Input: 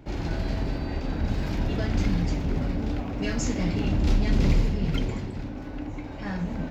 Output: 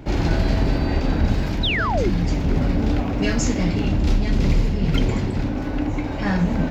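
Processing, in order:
sound drawn into the spectrogram fall, 0:01.63–0:02.10, 310–4,100 Hz −25 dBFS
speech leveller within 5 dB 0.5 s
level +6 dB

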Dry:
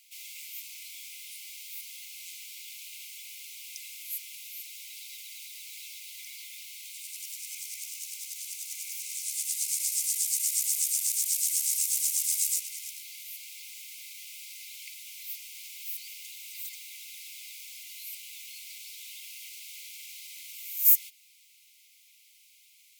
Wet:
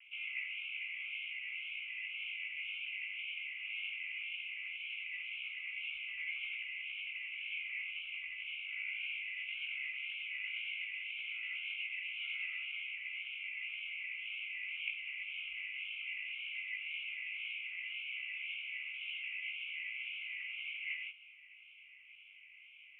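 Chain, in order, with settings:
Butterworth low-pass 2,900 Hz 96 dB per octave
pitch vibrato 1.9 Hz 63 cents
chorus effect 0.16 Hz, delay 16 ms, depth 4.2 ms
level +14 dB

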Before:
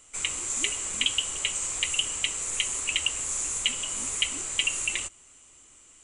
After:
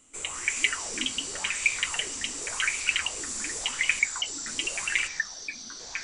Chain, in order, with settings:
0:03.99–0:04.47: spectral envelope exaggerated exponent 3
delay with pitch and tempo change per echo 167 ms, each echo −4 semitones, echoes 3, each echo −6 dB
auto-filter bell 0.89 Hz 230–2,500 Hz +15 dB
level −5 dB

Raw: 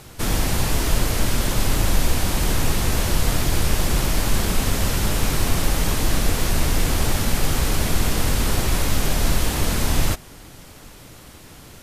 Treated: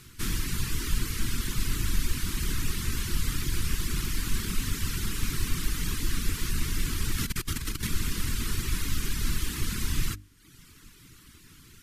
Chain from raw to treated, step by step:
reverb reduction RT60 0.85 s
mains-hum notches 50/100/150/200/250/300 Hz
0:07.18–0:07.87: compressor whose output falls as the input rises −24 dBFS, ratio −0.5
Butterworth band-reject 650 Hz, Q 0.73
level −6 dB

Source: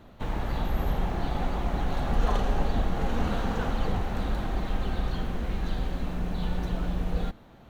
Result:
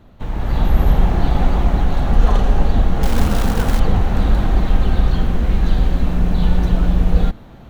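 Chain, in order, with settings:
low-shelf EQ 200 Hz +7 dB
automatic gain control gain up to 11.5 dB
0:03.03–0:03.80: floating-point word with a short mantissa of 2 bits

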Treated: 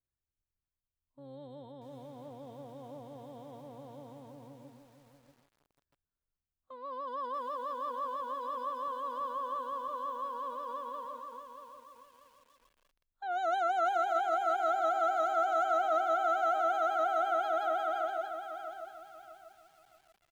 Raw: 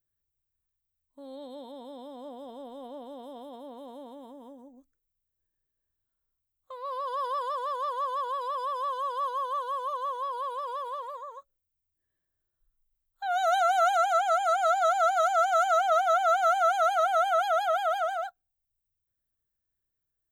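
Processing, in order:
sub-octave generator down 1 octave, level −4 dB
low-pass filter 2,200 Hz 6 dB per octave
on a send: single-tap delay 320 ms −18 dB
on the sum: feedback echo at a low word length 636 ms, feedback 35%, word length 9 bits, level −8 dB
level −5.5 dB

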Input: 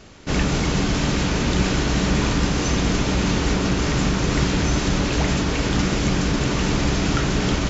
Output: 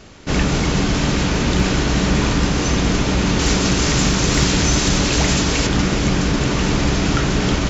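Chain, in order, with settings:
0:03.39–0:05.67: high-shelf EQ 4,100 Hz +10.5 dB
hard clipping −9 dBFS, distortion −40 dB
level +3 dB

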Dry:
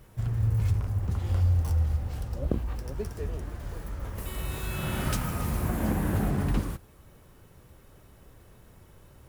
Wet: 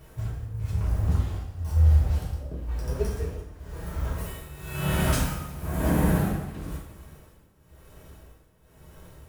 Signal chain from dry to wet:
amplitude tremolo 1 Hz, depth 85%
coupled-rooms reverb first 0.66 s, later 2.9 s, from −26 dB, DRR −5 dB

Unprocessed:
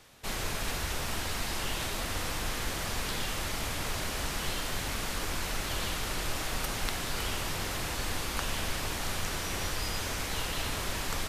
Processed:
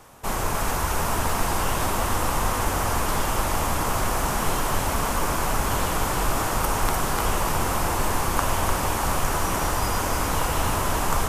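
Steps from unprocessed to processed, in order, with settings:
graphic EQ with 10 bands 1,000 Hz +7 dB, 2,000 Hz −5 dB, 4,000 Hz −10 dB
echo with a time of its own for lows and highs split 810 Hz, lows 723 ms, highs 299 ms, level −5 dB
level +8.5 dB

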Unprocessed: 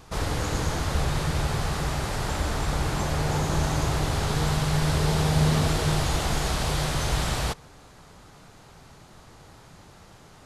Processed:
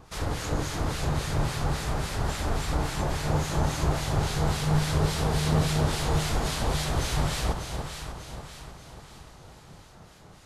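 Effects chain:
two-band tremolo in antiphase 3.6 Hz, depth 70%, crossover 1,500 Hz
delay that swaps between a low-pass and a high-pass 296 ms, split 1,000 Hz, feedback 69%, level −4 dB

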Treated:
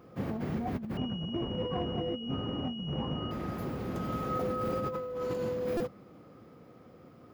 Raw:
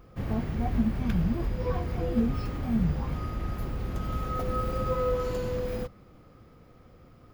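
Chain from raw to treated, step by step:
high-pass filter 180 Hz 12 dB per octave
tilt shelving filter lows +3.5 dB
compressor whose output falls as the input rises −32 dBFS, ratio −1
buffer that repeats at 0:05.77, samples 128, times 10
0:00.97–0:03.31: switching amplifier with a slow clock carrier 2,900 Hz
level −1.5 dB

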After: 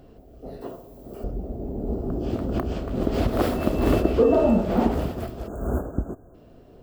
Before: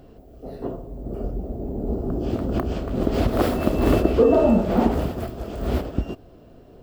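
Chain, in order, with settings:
0:00.61–0:01.24: spectral tilt +3 dB per octave
0:05.47–0:06.35: time-frequency box erased 1,700–6,300 Hz
level −2 dB

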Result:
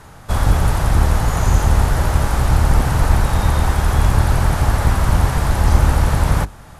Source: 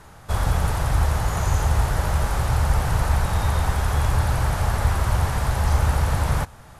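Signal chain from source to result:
sub-octave generator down 1 octave, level −2 dB
level +4.5 dB

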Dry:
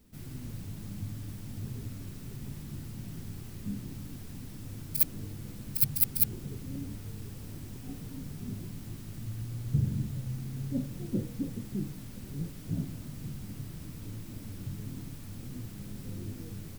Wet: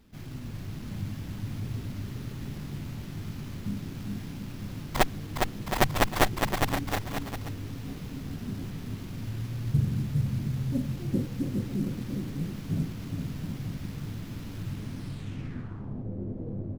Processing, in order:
bouncing-ball delay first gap 410 ms, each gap 0.75×, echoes 5
low-pass filter sweep 12,000 Hz → 570 Hz, 0:14.70–0:16.09
windowed peak hold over 5 samples
level +2.5 dB

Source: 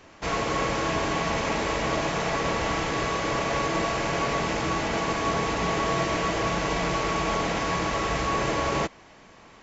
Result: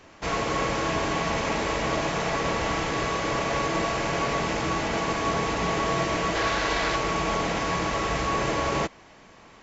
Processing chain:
0:06.35–0:06.96: graphic EQ with 15 bands 160 Hz −10 dB, 1,600 Hz +6 dB, 4,000 Hz +6 dB

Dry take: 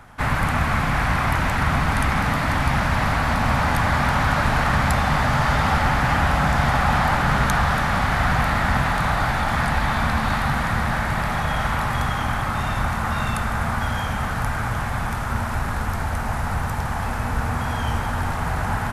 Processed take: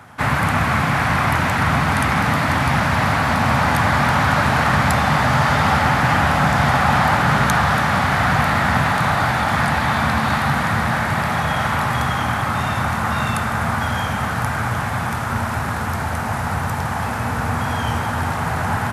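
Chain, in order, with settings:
high-pass filter 83 Hz 24 dB per octave
level +4 dB

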